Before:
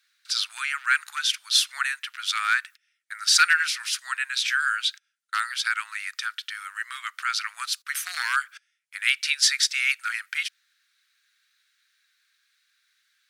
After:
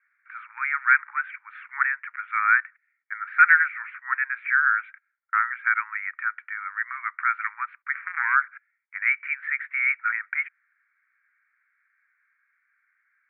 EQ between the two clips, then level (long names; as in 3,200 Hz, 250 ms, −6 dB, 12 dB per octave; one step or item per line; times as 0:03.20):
Chebyshev band-pass filter 820–2,300 Hz, order 5
high-frequency loss of the air 110 metres
parametric band 1,300 Hz +5.5 dB 2.8 octaves
0.0 dB